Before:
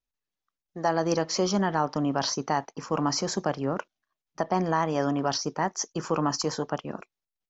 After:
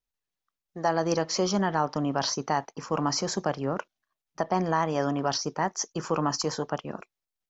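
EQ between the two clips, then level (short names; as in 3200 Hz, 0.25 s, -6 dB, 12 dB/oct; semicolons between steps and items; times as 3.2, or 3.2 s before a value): bell 270 Hz -2 dB; 0.0 dB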